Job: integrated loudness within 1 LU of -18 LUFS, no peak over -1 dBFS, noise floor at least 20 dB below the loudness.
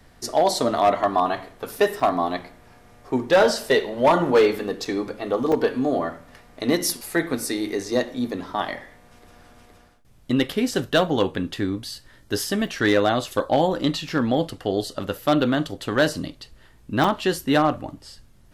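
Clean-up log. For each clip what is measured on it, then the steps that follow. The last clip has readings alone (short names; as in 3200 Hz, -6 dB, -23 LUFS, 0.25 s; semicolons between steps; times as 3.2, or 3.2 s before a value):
clipped 0.4%; flat tops at -10.5 dBFS; dropouts 6; longest dropout 4.0 ms; loudness -23.0 LUFS; peak -10.5 dBFS; loudness target -18.0 LUFS
-> clip repair -10.5 dBFS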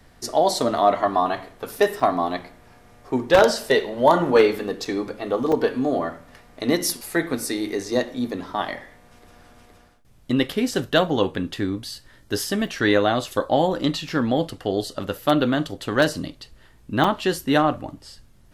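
clipped 0.0%; dropouts 6; longest dropout 4.0 ms
-> interpolate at 2/4.85/5.52/12.67/14.09/17.04, 4 ms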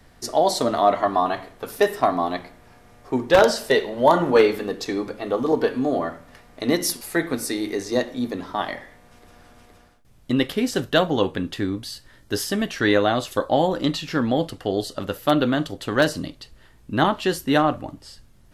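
dropouts 0; loudness -22.5 LUFS; peak -1.5 dBFS; loudness target -18.0 LUFS
-> gain +4.5 dB; limiter -1 dBFS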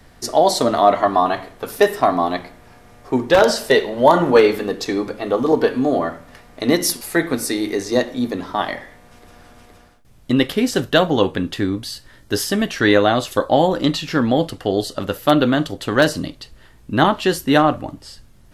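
loudness -18.0 LUFS; peak -1.0 dBFS; noise floor -48 dBFS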